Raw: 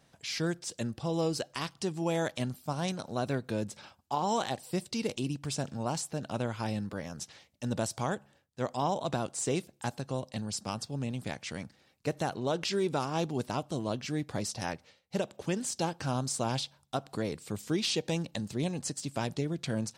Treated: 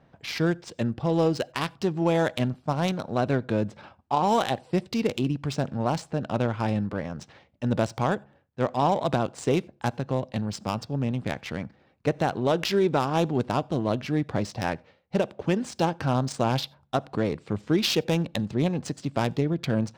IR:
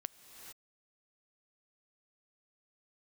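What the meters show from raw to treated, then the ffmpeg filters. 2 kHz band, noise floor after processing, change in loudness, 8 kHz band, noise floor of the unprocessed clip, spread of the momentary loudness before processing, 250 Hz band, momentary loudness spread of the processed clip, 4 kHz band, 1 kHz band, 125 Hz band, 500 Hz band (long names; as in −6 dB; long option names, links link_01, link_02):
+6.5 dB, −62 dBFS, +7.0 dB, −4.0 dB, −67 dBFS, 8 LU, +7.5 dB, 8 LU, +3.5 dB, +7.5 dB, +7.5 dB, +7.5 dB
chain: -filter_complex "[0:a]adynamicsmooth=sensitivity=5:basefreq=1900,asplit=2[link_01][link_02];[1:a]atrim=start_sample=2205,atrim=end_sample=4410[link_03];[link_02][link_03]afir=irnorm=-1:irlink=0,volume=8.5dB[link_04];[link_01][link_04]amix=inputs=2:normalize=0,volume=-1dB"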